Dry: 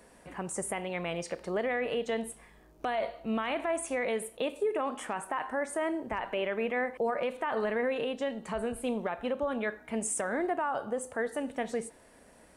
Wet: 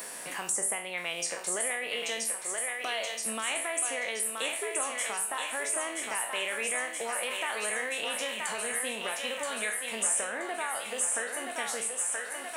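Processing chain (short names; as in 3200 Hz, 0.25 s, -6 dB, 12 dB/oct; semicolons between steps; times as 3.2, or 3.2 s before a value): spectral trails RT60 0.36 s; tilt +4.5 dB/oct; thinning echo 0.976 s, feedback 65%, high-pass 580 Hz, level -4.5 dB; three-band squash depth 70%; gain -4 dB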